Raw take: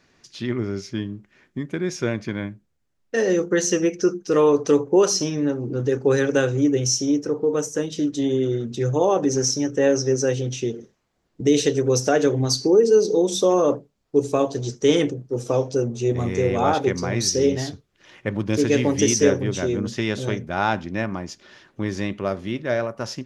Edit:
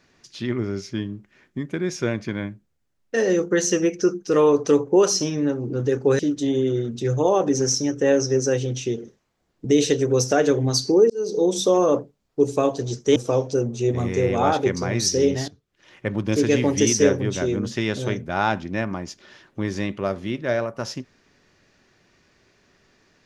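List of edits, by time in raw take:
6.19–7.95 s: delete
12.86–13.22 s: fade in
14.92–15.37 s: delete
17.69–18.31 s: fade in, from -15 dB

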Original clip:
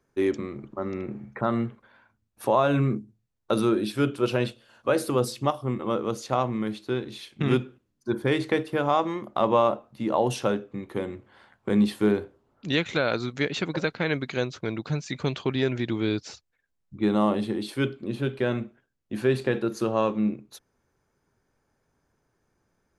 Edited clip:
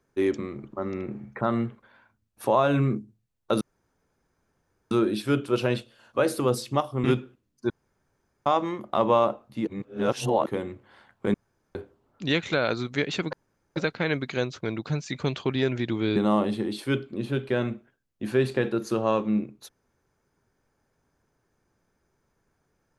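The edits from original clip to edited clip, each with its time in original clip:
3.61 s: insert room tone 1.30 s
5.74–7.47 s: delete
8.13–8.89 s: room tone
10.10–10.89 s: reverse
11.77–12.18 s: room tone
13.76 s: insert room tone 0.43 s
16.16–17.06 s: delete

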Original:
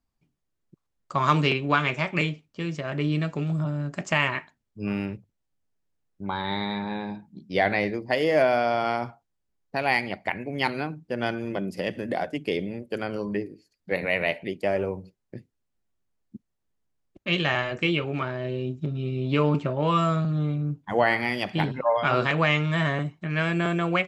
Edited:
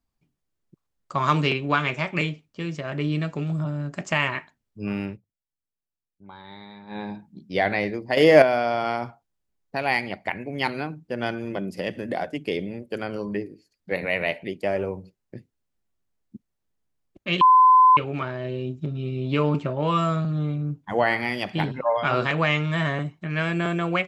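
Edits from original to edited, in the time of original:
5.09–6.99 s: dip -14.5 dB, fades 0.12 s
8.17–8.42 s: gain +8 dB
17.41–17.97 s: bleep 1.02 kHz -10.5 dBFS

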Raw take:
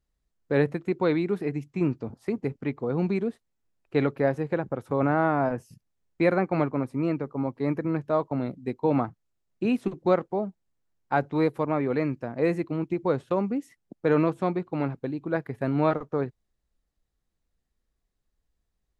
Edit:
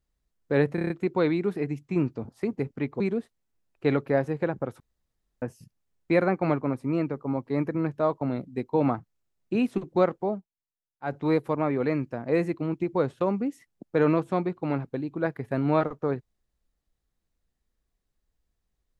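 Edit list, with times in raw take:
0.75 s: stutter 0.03 s, 6 plays
2.85–3.10 s: delete
4.90–5.52 s: room tone
10.43–11.26 s: dip -21.5 dB, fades 0.14 s

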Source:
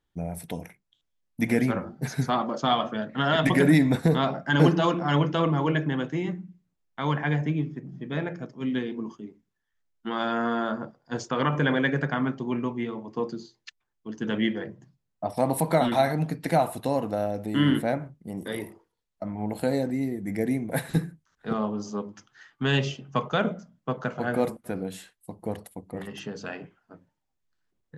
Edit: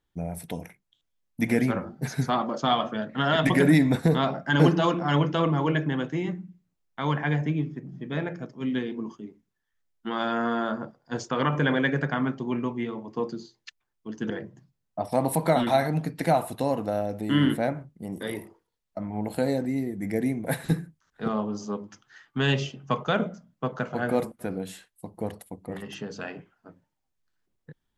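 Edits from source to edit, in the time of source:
14.30–14.55 s: delete

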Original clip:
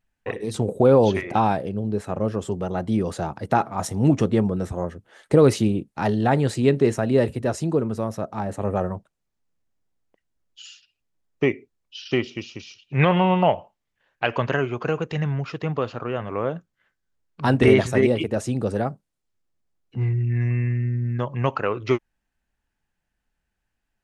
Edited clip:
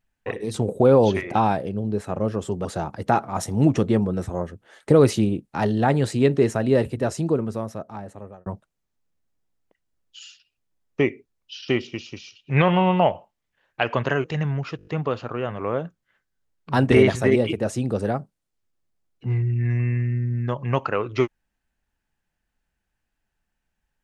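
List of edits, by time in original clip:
2.65–3.08 s: delete
7.76–8.89 s: fade out
14.67–15.05 s: delete
15.58 s: stutter 0.02 s, 6 plays

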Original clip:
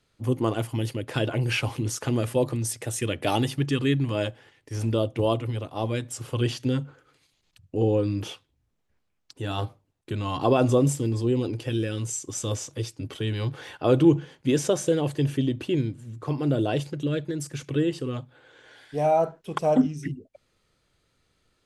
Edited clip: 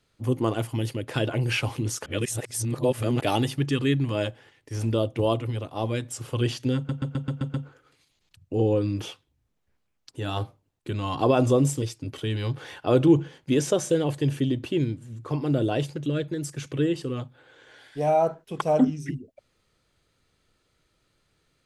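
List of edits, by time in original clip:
2.06–3.21 s: reverse
6.76 s: stutter 0.13 s, 7 plays
11.04–12.79 s: delete

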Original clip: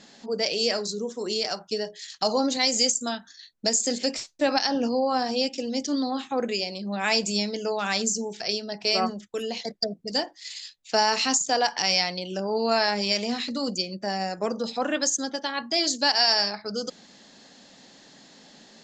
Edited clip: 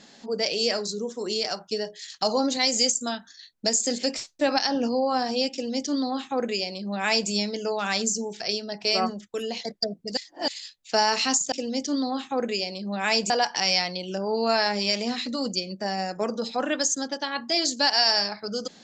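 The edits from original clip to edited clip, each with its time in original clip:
5.52–7.30 s: copy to 11.52 s
10.17–10.48 s: reverse

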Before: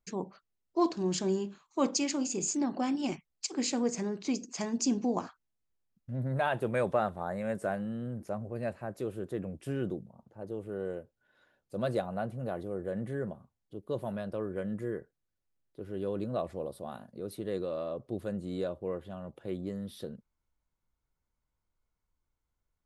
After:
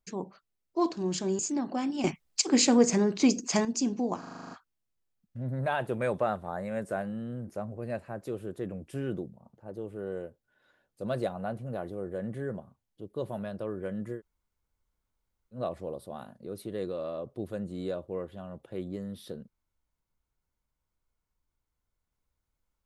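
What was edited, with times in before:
1.39–2.44 s: delete
3.09–4.70 s: gain +9 dB
5.24 s: stutter 0.04 s, 9 plays
14.90–16.29 s: room tone, crossfade 0.10 s

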